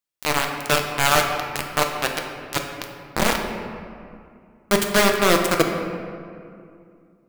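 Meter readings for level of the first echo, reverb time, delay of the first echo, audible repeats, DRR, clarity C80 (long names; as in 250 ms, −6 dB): no echo audible, 2.4 s, no echo audible, no echo audible, 2.0 dB, 6.0 dB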